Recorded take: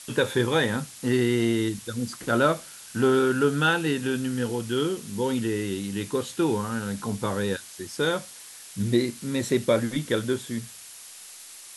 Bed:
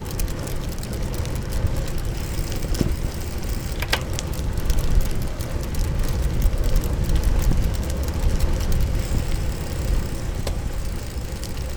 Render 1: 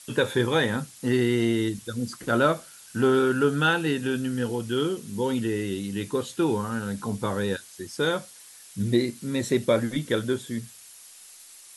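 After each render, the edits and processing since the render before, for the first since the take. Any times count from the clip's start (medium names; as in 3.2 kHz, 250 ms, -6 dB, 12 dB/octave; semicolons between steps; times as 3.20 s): noise reduction 6 dB, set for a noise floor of -45 dBFS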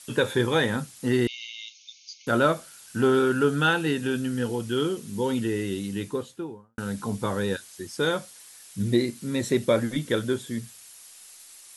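1.27–2.27 s: brick-wall FIR band-pass 2.1–6.8 kHz; 5.85–6.78 s: studio fade out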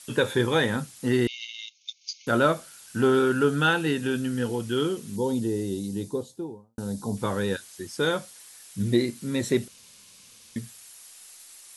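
1.38–2.14 s: transient shaper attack +9 dB, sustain -11 dB; 5.16–7.17 s: high-order bell 1.9 kHz -13.5 dB; 9.68–10.56 s: room tone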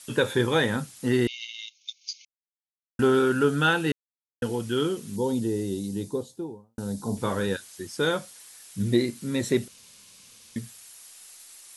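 2.25–2.99 s: mute; 3.92–4.42 s: mute; 7.00–7.47 s: doubling 43 ms -9 dB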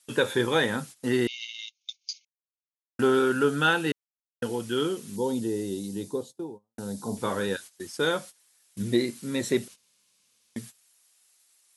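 gate -40 dBFS, range -16 dB; high-pass 210 Hz 6 dB/octave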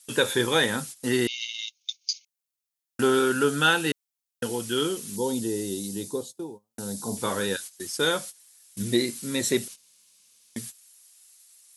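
treble shelf 3.5 kHz +10.5 dB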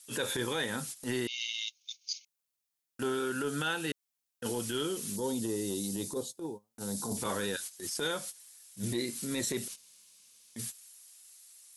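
transient shaper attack -12 dB, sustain +1 dB; compression 6:1, threshold -30 dBFS, peak gain reduction 11.5 dB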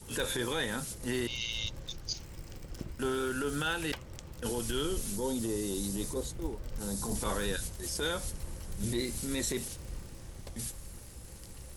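add bed -20 dB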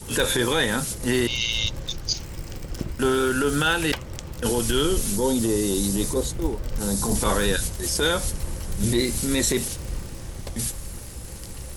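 trim +11 dB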